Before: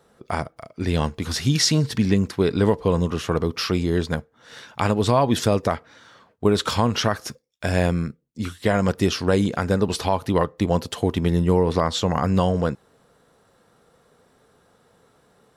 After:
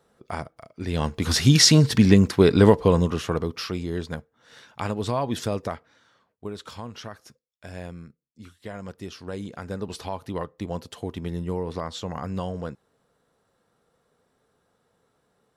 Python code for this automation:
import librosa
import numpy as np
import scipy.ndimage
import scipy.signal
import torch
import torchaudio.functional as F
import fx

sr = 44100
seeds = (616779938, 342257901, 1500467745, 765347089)

y = fx.gain(x, sr, db=fx.line((0.88, -6.0), (1.3, 4.0), (2.71, 4.0), (3.72, -7.5), (5.63, -7.5), (6.58, -17.0), (9.05, -17.0), (9.91, -10.5)))